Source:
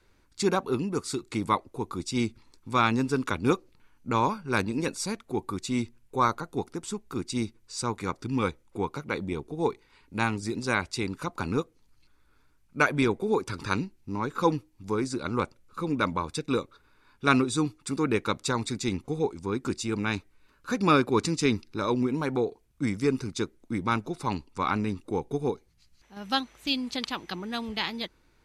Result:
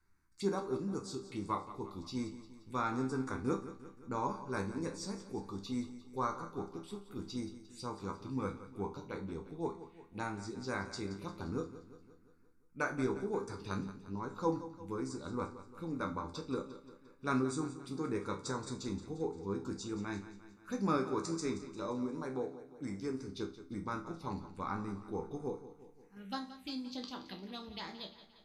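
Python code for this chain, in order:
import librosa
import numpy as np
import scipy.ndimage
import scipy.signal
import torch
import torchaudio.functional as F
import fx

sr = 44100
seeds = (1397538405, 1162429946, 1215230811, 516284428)

y = fx.low_shelf(x, sr, hz=210.0, db=-6.0, at=(20.98, 23.28))
y = fx.env_phaser(y, sr, low_hz=530.0, high_hz=3000.0, full_db=-26.5)
y = fx.resonator_bank(y, sr, root=36, chord='major', decay_s=0.33)
y = fx.echo_feedback(y, sr, ms=175, feedback_pct=55, wet_db=-14.0)
y = y * librosa.db_to_amplitude(1.5)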